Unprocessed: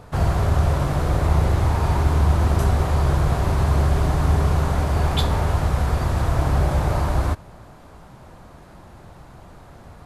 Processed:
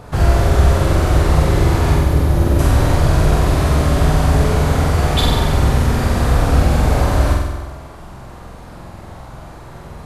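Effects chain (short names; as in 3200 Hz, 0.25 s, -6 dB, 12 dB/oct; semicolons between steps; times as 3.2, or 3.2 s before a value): spectral gain 1.95–2.6, 640–10000 Hz -6 dB; flutter echo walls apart 8 m, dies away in 1.1 s; dynamic EQ 940 Hz, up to -5 dB, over -36 dBFS, Q 1.2; gain +5.5 dB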